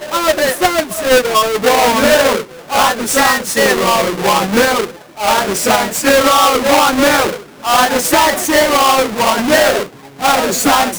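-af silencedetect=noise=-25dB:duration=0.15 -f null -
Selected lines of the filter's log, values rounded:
silence_start: 2.43
silence_end: 2.70 | silence_duration: 0.27
silence_start: 4.90
silence_end: 5.19 | silence_duration: 0.29
silence_start: 7.37
silence_end: 7.64 | silence_duration: 0.27
silence_start: 9.86
silence_end: 10.21 | silence_duration: 0.34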